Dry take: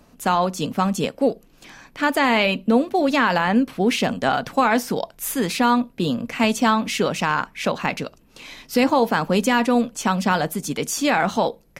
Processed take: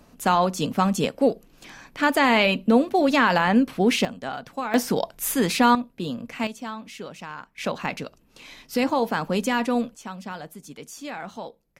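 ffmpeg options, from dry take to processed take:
ffmpeg -i in.wav -af "asetnsamples=nb_out_samples=441:pad=0,asendcmd='4.05 volume volume -11.5dB;4.74 volume volume 0.5dB;5.75 volume volume -7.5dB;6.47 volume volume -16dB;7.58 volume volume -5dB;9.95 volume volume -15.5dB',volume=-0.5dB" out.wav

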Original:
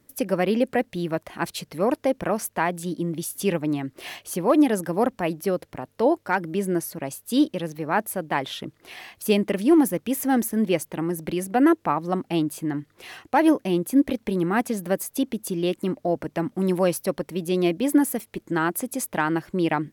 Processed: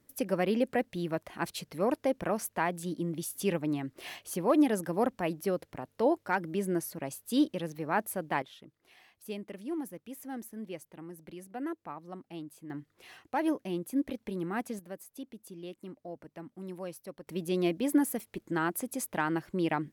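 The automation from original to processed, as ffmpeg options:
ffmpeg -i in.wav -af "asetnsamples=nb_out_samples=441:pad=0,asendcmd='8.42 volume volume -19dB;12.7 volume volume -11.5dB;14.79 volume volume -19dB;17.27 volume volume -7dB',volume=-6.5dB" out.wav

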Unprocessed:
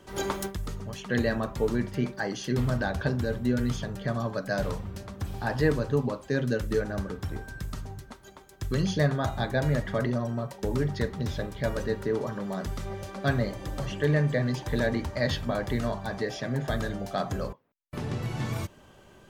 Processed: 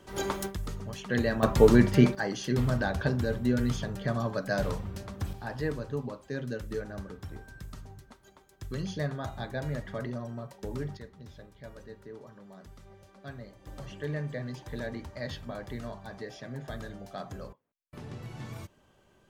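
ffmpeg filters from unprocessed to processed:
ffmpeg -i in.wav -af "asetnsamples=nb_out_samples=441:pad=0,asendcmd='1.43 volume volume 8.5dB;2.15 volume volume -0.5dB;5.33 volume volume -8dB;10.97 volume volume -17.5dB;13.67 volume volume -10dB',volume=-1.5dB" out.wav

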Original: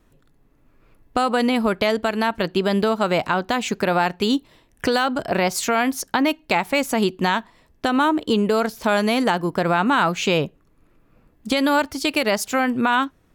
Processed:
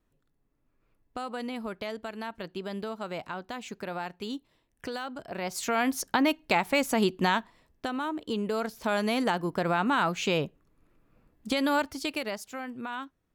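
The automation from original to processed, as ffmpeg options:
ffmpeg -i in.wav -af "volume=2dB,afade=type=in:start_time=5.36:duration=0.58:silence=0.281838,afade=type=out:start_time=7.35:duration=0.65:silence=0.334965,afade=type=in:start_time=8:duration=1.2:silence=0.446684,afade=type=out:start_time=11.81:duration=0.64:silence=0.316228" out.wav

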